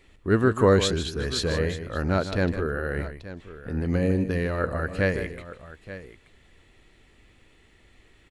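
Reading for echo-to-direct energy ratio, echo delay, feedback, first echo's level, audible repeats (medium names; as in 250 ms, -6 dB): -9.5 dB, 153 ms, no regular repeats, -11.0 dB, 2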